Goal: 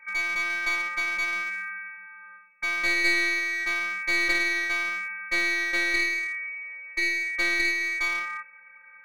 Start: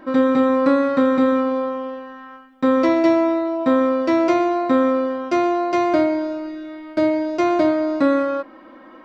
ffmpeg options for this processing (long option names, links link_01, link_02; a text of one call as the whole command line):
ffmpeg -i in.wav -af "afftfilt=real='hypot(re,im)*cos(PI*b)':imag='0':win_size=512:overlap=0.75,lowpass=frequency=2200:width_type=q:width=0.5098,lowpass=frequency=2200:width_type=q:width=0.6013,lowpass=frequency=2200:width_type=q:width=0.9,lowpass=frequency=2200:width_type=q:width=2.563,afreqshift=-2600,aeval=exprs='clip(val(0),-1,0.075)':channel_layout=same,volume=-4.5dB" out.wav